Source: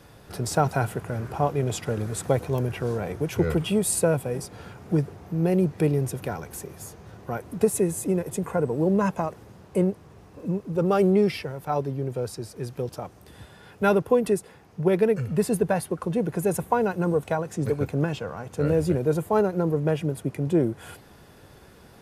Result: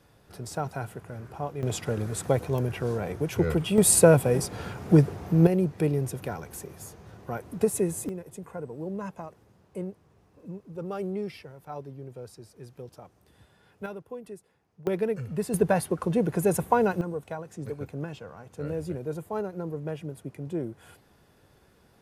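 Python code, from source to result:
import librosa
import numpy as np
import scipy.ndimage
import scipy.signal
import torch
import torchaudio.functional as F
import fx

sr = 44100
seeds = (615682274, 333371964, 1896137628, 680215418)

y = fx.gain(x, sr, db=fx.steps((0.0, -9.5), (1.63, -1.5), (3.78, 5.5), (5.47, -3.0), (8.09, -12.5), (13.86, -19.0), (14.87, -6.5), (15.54, 0.5), (17.01, -10.0)))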